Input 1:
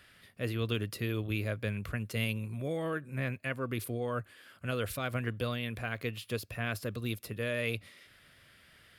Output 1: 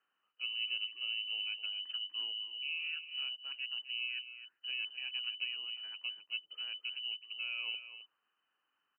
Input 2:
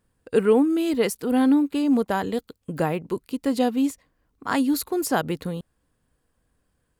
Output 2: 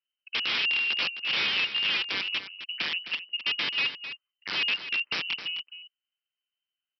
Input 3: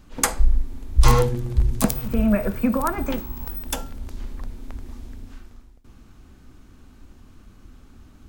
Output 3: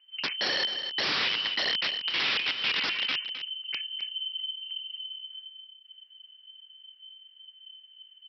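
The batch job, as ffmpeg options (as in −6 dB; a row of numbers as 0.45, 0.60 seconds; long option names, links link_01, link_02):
-filter_complex "[0:a]afwtdn=0.0316,lowpass=frequency=2600:width_type=q:width=0.5098,lowpass=frequency=2600:width_type=q:width=0.6013,lowpass=frequency=2600:width_type=q:width=0.9,lowpass=frequency=2600:width_type=q:width=2.563,afreqshift=-3100,aresample=11025,aeval=exprs='(mod(7.94*val(0)+1,2)-1)/7.94':channel_layout=same,aresample=44100,highpass=170,equalizer=frequency=670:width_type=o:width=0.65:gain=-5.5,asplit=2[link_01][link_02];[link_02]aecho=0:1:261:0.282[link_03];[link_01][link_03]amix=inputs=2:normalize=0,volume=-4.5dB"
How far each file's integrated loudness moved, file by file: −2.5, −4.0, −5.0 LU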